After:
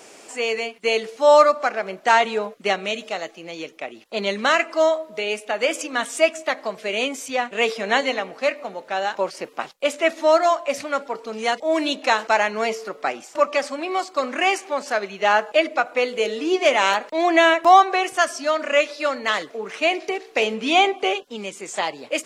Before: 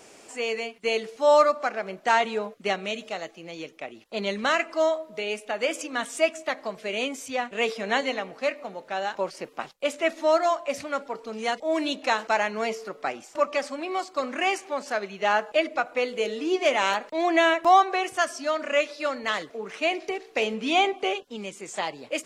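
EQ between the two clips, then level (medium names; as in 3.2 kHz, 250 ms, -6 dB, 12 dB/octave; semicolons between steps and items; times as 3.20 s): peaking EQ 68 Hz -4.5 dB 2.2 oct; bass shelf 120 Hz -8 dB; +5.5 dB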